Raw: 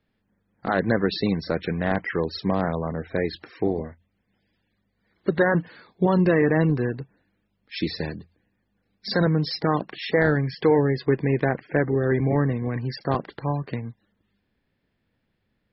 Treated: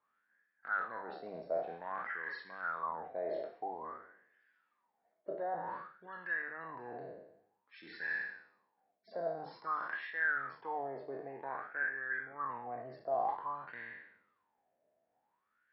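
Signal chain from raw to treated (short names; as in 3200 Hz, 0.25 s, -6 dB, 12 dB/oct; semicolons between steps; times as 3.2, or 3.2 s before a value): spectral trails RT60 0.84 s; reverse; compressor 6:1, threshold -31 dBFS, peak gain reduction 17 dB; reverse; wah 0.52 Hz 630–1700 Hz, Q 13; notches 50/100/150/200 Hz; gain +12.5 dB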